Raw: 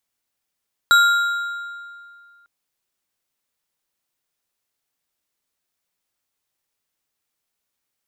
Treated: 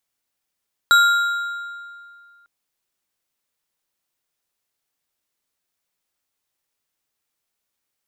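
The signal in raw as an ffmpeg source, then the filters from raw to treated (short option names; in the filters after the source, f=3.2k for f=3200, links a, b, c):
-f lavfi -i "aevalsrc='0.355*pow(10,-3*t/2.16)*sin(2*PI*1400*t)+0.15*pow(10,-3*t/1.593)*sin(2*PI*3859.8*t)+0.0631*pow(10,-3*t/1.302)*sin(2*PI*7565.6*t)+0.0266*pow(10,-3*t/1.12)*sin(2*PI*12506.2*t)':d=1.55:s=44100"
-af "bandreject=f=60:t=h:w=6,bandreject=f=120:t=h:w=6,bandreject=f=180:t=h:w=6,bandreject=f=240:t=h:w=6"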